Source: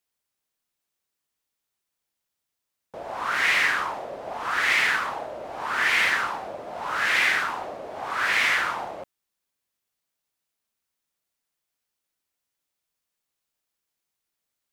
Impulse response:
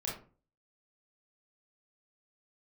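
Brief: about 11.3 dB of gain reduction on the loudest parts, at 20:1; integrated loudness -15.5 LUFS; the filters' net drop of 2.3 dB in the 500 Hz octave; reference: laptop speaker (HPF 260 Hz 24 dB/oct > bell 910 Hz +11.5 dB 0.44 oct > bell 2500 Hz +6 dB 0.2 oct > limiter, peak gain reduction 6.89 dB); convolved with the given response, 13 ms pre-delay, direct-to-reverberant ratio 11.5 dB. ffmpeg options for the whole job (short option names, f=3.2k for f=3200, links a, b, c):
-filter_complex "[0:a]equalizer=f=500:t=o:g=-5.5,acompressor=threshold=-29dB:ratio=20,asplit=2[a][b];[1:a]atrim=start_sample=2205,adelay=13[c];[b][c]afir=irnorm=-1:irlink=0,volume=-14dB[d];[a][d]amix=inputs=2:normalize=0,highpass=f=260:w=0.5412,highpass=f=260:w=1.3066,equalizer=f=910:t=o:w=0.44:g=11.5,equalizer=f=2.5k:t=o:w=0.2:g=6,volume=15.5dB,alimiter=limit=-6.5dB:level=0:latency=1"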